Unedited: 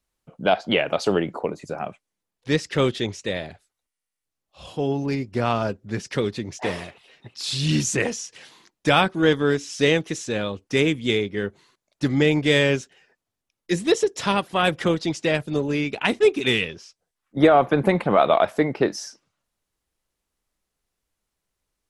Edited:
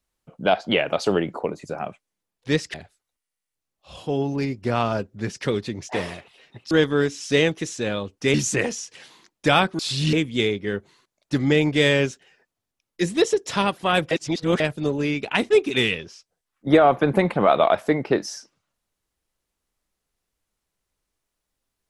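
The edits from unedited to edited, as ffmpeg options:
-filter_complex "[0:a]asplit=8[a][b][c][d][e][f][g][h];[a]atrim=end=2.742[i];[b]atrim=start=3.438:end=7.412[j];[c]atrim=start=9.198:end=10.832[k];[d]atrim=start=7.748:end=9.202[l];[e]atrim=start=7.408:end=7.752[m];[f]atrim=start=10.828:end=14.812[n];[g]atrim=start=14.808:end=15.302,asetpts=PTS-STARTPTS,areverse[o];[h]atrim=start=15.298[p];[i][j]acrossfade=d=0.004:c1=hsin:c2=hsin[q];[q][k]acrossfade=d=0.004:c1=hsin:c2=hsin[r];[r][l]acrossfade=d=0.004:c1=hsin:c2=hsin[s];[s][m]acrossfade=d=0.004:c1=hsin:c2=hsin[t];[t][n]acrossfade=d=0.004:c1=hsin:c2=hsin[u];[u][o]acrossfade=d=0.004:c1=hsin:c2=hsin[v];[v][p]acrossfade=d=0.004:c1=hsin:c2=hsin"

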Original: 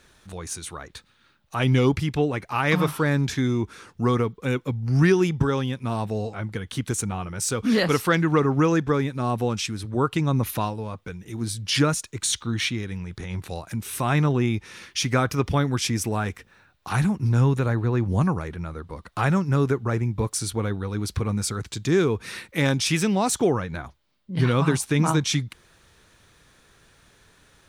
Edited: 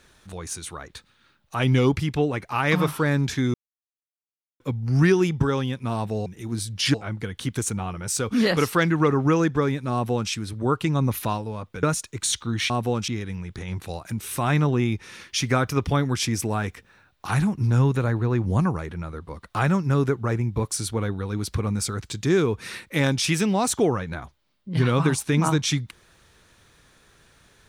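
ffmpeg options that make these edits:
-filter_complex "[0:a]asplit=8[a][b][c][d][e][f][g][h];[a]atrim=end=3.54,asetpts=PTS-STARTPTS,afade=t=out:st=3.536:d=0.004:c=hsin[i];[b]atrim=start=3.54:end=4.6,asetpts=PTS-STARTPTS,volume=0[j];[c]atrim=start=4.6:end=6.262,asetpts=PTS-STARTPTS,afade=t=in:d=0.004:c=hsin[k];[d]atrim=start=11.148:end=11.832[l];[e]atrim=start=6.258:end=11.152[m];[f]atrim=start=11.828:end=12.702[n];[g]atrim=start=9.248:end=9.632[o];[h]atrim=start=12.698[p];[i][j][k]concat=n=3:v=0:a=1[q];[q][l]acrossfade=d=0.004:c1=hsin:c2=hsin[r];[r][m]acrossfade=d=0.004:c1=hsin:c2=hsin[s];[s][n]acrossfade=d=0.004:c1=hsin:c2=hsin[t];[t][o]acrossfade=d=0.004:c1=hsin:c2=hsin[u];[u][p]acrossfade=d=0.004:c1=hsin:c2=hsin"

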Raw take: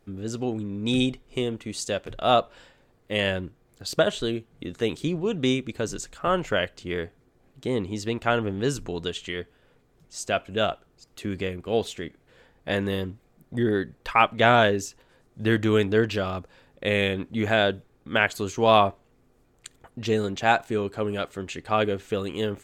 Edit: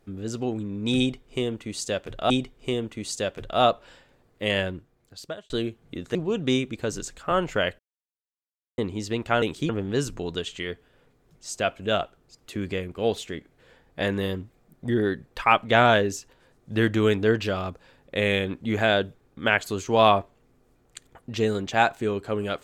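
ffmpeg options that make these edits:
-filter_complex "[0:a]asplit=8[a][b][c][d][e][f][g][h];[a]atrim=end=2.302[i];[b]atrim=start=0.988:end=4.19,asetpts=PTS-STARTPTS,afade=t=out:st=2.292:d=0.91[j];[c]atrim=start=4.19:end=4.842,asetpts=PTS-STARTPTS,afade=t=in:d=0.004:c=hsin[k];[d]atrim=start=5.108:end=6.75,asetpts=PTS-STARTPTS,afade=t=out:st=1.638:d=0.004:c=hsin[l];[e]atrim=start=6.75:end=7.74,asetpts=PTS-STARTPTS,volume=0[m];[f]atrim=start=7.74:end=8.382,asetpts=PTS-STARTPTS,afade=t=in:d=0.004:c=hsin[n];[g]atrim=start=4.838:end=5.112[o];[h]atrim=start=8.378[p];[j][k]concat=n=2:v=0:a=1[q];[i][q]acrossfade=d=0.004:c1=hsin:c2=hsin[r];[l][m][n]concat=n=3:v=0:a=1[s];[r][s]acrossfade=d=0.004:c1=hsin:c2=hsin[t];[t][o]acrossfade=d=0.004:c1=hsin:c2=hsin[u];[u][p]acrossfade=d=0.004:c1=hsin:c2=hsin"

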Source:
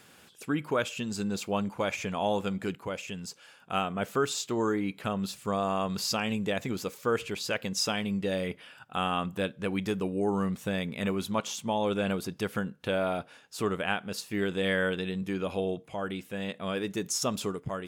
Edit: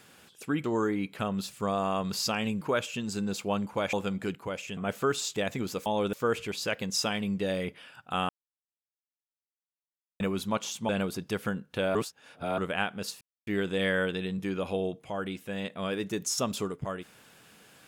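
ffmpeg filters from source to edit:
-filter_complex "[0:a]asplit=14[a][b][c][d][e][f][g][h][i][j][k][l][m][n];[a]atrim=end=0.642[o];[b]atrim=start=4.488:end=6.462[p];[c]atrim=start=0.638:end=1.962[q];[d]atrim=start=2.328:end=3.172[r];[e]atrim=start=3.898:end=4.492[s];[f]atrim=start=6.458:end=6.962[t];[g]atrim=start=11.718:end=11.992[u];[h]atrim=start=6.958:end=9.12,asetpts=PTS-STARTPTS,afade=t=out:st=2.158:d=0.004:c=hsin[v];[i]atrim=start=9.12:end=11.03,asetpts=PTS-STARTPTS,volume=0[w];[j]atrim=start=11.03:end=11.722,asetpts=PTS-STARTPTS,afade=t=in:d=0.004:c=hsin[x];[k]atrim=start=11.988:end=13.052[y];[l]atrim=start=13.048:end=13.682,asetpts=PTS-STARTPTS,areverse[z];[m]atrim=start=13.678:end=14.31,asetpts=PTS-STARTPTS,afade=t=out:st=0.628:d=0.004:c=hsin,apad=pad_dur=0.26[aa];[n]atrim=start=14.31,asetpts=PTS-STARTPTS,afade=t=in:d=0.004:c=hsin[ab];[o][p]acrossfade=d=0.004:c1=hsin:c2=hsin[ac];[ac][q]acrossfade=d=0.004:c1=hsin:c2=hsin[ad];[ad][r]acrossfade=d=0.004:c1=hsin:c2=hsin[ae];[ae][s]acrossfade=d=0.004:c1=hsin:c2=hsin[af];[af][t]acrossfade=d=0.004:c1=hsin:c2=hsin[ag];[ag][u]acrossfade=d=0.004:c1=hsin:c2=hsin[ah];[v][w][x]concat=n=3:v=0:a=1[ai];[ah][ai]acrossfade=d=0.004:c1=hsin:c2=hsin[aj];[aj][y]acrossfade=d=0.004:c1=hsin:c2=hsin[ak];[ak][z]acrossfade=d=0.004:c1=hsin:c2=hsin[al];[aa][ab]concat=n=2:v=0:a=1[am];[al][am]acrossfade=d=0.004:c1=hsin:c2=hsin"

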